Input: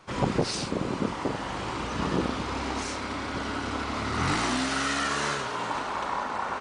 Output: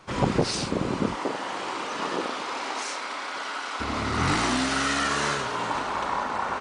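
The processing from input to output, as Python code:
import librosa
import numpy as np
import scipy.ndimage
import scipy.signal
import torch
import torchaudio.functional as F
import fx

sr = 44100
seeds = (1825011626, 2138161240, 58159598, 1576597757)

y = fx.highpass(x, sr, hz=fx.line((1.15, 290.0), (3.79, 800.0)), slope=12, at=(1.15, 3.79), fade=0.02)
y = F.gain(torch.from_numpy(y), 2.5).numpy()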